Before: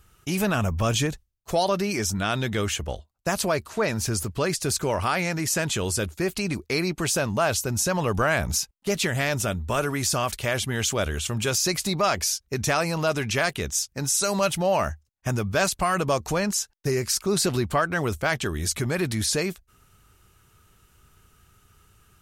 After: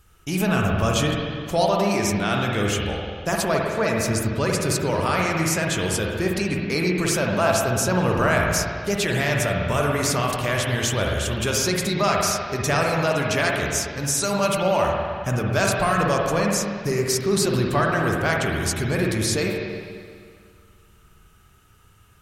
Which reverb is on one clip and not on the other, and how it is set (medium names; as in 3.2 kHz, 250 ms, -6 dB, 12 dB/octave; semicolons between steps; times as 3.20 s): spring tank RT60 2 s, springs 49/55 ms, chirp 70 ms, DRR -1 dB